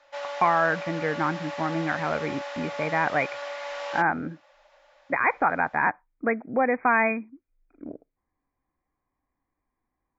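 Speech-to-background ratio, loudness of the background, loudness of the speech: 9.0 dB, −35.0 LKFS, −26.0 LKFS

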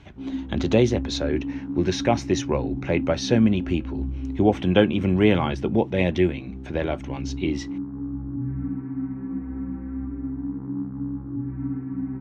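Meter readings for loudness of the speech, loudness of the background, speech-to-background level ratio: −23.5 LKFS, −32.0 LKFS, 8.5 dB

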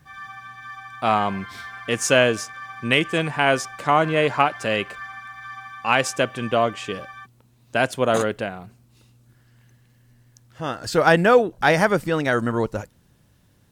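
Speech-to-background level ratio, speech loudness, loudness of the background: 16.0 dB, −21.0 LKFS, −37.0 LKFS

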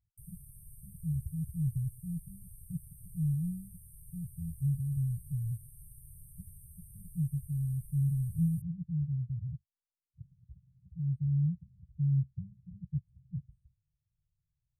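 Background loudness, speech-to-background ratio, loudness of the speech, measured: −53.5 LKFS, 18.5 dB, −35.0 LKFS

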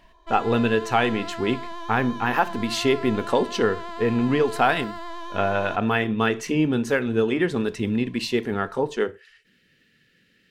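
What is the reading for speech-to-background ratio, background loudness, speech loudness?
12.5 dB, −36.0 LKFS, −23.5 LKFS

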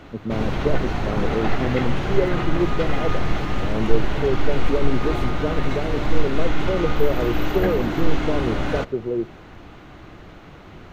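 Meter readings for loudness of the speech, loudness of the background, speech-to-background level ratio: −26.5 LKFS, −26.0 LKFS, −0.5 dB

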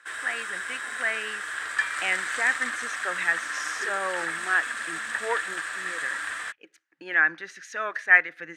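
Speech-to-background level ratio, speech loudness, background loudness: 4.0 dB, −26.5 LKFS, −30.5 LKFS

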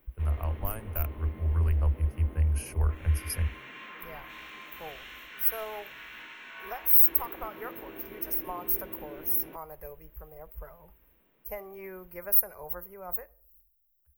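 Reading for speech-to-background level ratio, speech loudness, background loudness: 18.5 dB, −27.0 LKFS, −45.5 LKFS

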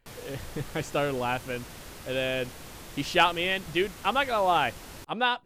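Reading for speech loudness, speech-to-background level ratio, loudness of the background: −28.0 LKFS, 16.0 dB, −44.0 LKFS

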